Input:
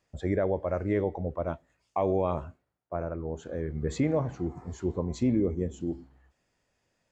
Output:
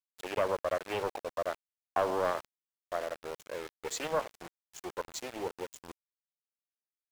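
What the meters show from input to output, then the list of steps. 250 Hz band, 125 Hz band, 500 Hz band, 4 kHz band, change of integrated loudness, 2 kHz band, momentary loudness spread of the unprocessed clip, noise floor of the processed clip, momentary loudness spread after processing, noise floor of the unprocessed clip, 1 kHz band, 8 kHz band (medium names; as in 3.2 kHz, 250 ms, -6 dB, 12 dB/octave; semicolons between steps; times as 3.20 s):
-16.0 dB, -19.5 dB, -4.0 dB, +8.0 dB, -5.0 dB, +3.5 dB, 9 LU, under -85 dBFS, 14 LU, -77 dBFS, +1.5 dB, no reading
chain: high-pass 470 Hz 24 dB/octave; treble shelf 3.9 kHz +10.5 dB; small samples zeroed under -38.5 dBFS; loudspeaker Doppler distortion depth 0.4 ms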